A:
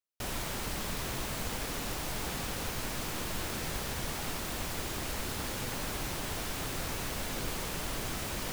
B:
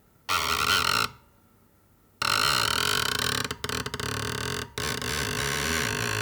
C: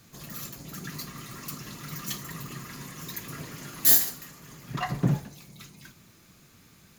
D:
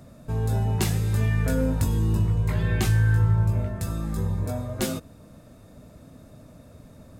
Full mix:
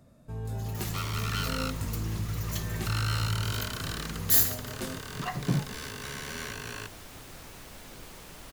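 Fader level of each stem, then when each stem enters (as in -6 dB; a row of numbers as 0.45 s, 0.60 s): -10.5 dB, -11.5 dB, -3.5 dB, -10.5 dB; 0.55 s, 0.65 s, 0.45 s, 0.00 s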